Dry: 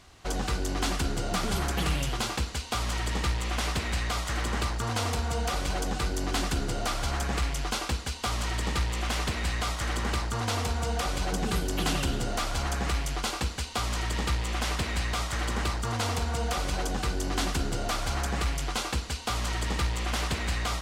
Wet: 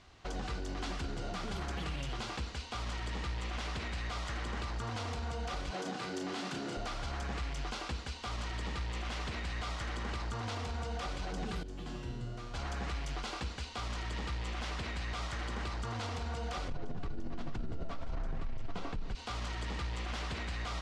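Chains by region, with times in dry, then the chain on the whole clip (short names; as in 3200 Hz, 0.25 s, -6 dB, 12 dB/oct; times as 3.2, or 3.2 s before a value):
5.71–6.77 HPF 140 Hz 24 dB/oct + doubler 32 ms -4 dB
11.63–12.54 low shelf 440 Hz +10 dB + notch 810 Hz, Q 14 + resonator 120 Hz, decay 1.2 s, mix 90%
16.68–19.15 tilt -3.5 dB/oct + frequency shift -40 Hz
whole clip: LPF 5300 Hz 12 dB/oct; limiter -25.5 dBFS; gain -4.5 dB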